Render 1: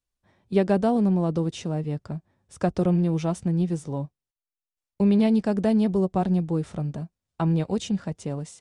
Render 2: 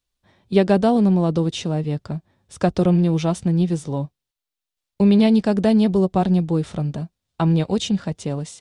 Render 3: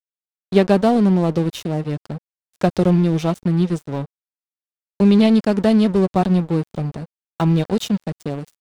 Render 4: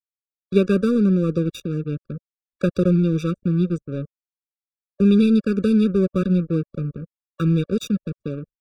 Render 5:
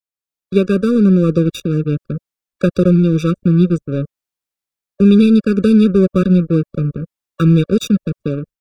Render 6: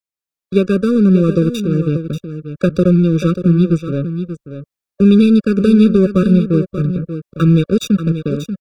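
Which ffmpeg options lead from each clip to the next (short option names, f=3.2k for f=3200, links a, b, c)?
-af "equalizer=f=3.7k:t=o:w=0.89:g=6,volume=5dB"
-af "aeval=exprs='sgn(val(0))*max(abs(val(0))-0.0266,0)':c=same,volume=2.5dB"
-af "anlmdn=10,afftfilt=real='re*eq(mod(floor(b*sr/1024/560),2),0)':imag='im*eq(mod(floor(b*sr/1024/560),2),0)':win_size=1024:overlap=0.75,volume=-2dB"
-af "dynaudnorm=f=110:g=5:m=9dB"
-af "aecho=1:1:586:0.316"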